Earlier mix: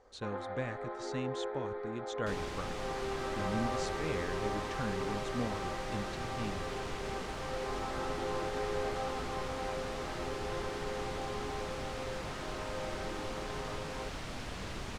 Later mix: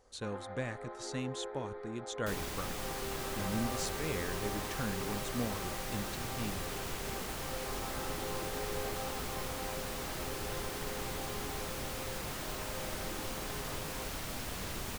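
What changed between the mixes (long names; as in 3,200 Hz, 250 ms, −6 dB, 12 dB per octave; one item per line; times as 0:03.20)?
first sound −5.0 dB
master: remove high-frequency loss of the air 84 metres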